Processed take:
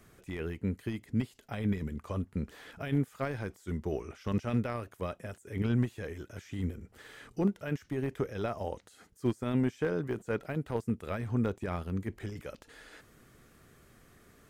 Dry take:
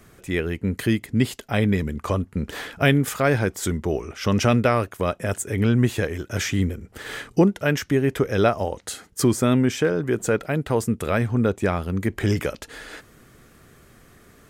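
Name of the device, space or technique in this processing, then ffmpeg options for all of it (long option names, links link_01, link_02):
de-esser from a sidechain: -filter_complex "[0:a]asplit=2[link_01][link_02];[link_02]highpass=frequency=5600:width=0.5412,highpass=frequency=5600:width=1.3066,apad=whole_len=639188[link_03];[link_01][link_03]sidechaincompress=threshold=-55dB:ratio=4:attack=0.92:release=20,volume=-8dB"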